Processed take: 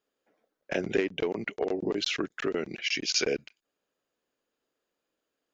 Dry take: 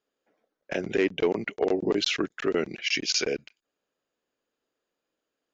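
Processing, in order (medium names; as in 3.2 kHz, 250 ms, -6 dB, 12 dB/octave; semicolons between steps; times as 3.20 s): 0.99–3.16 s: compression 4:1, threshold -26 dBFS, peak gain reduction 6.5 dB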